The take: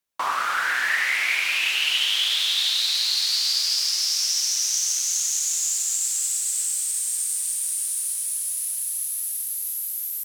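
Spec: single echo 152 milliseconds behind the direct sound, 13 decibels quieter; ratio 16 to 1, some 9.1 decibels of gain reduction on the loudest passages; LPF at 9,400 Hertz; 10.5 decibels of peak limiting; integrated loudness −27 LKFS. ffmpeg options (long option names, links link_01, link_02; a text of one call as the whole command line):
ffmpeg -i in.wav -af "lowpass=9400,acompressor=threshold=-28dB:ratio=16,alimiter=level_in=5dB:limit=-24dB:level=0:latency=1,volume=-5dB,aecho=1:1:152:0.224,volume=8dB" out.wav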